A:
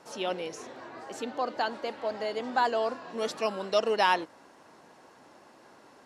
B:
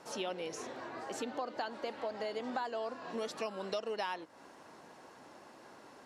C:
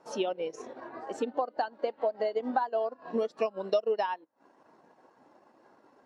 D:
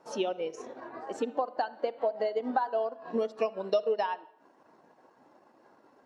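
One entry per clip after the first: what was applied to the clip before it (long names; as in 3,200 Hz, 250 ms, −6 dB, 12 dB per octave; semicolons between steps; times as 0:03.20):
downward compressor 6 to 1, threshold −35 dBFS, peak gain reduction 15 dB
transient designer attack +3 dB, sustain −10 dB; every bin expanded away from the loudest bin 1.5 to 1; level +4 dB
convolution reverb RT60 0.70 s, pre-delay 43 ms, DRR 17 dB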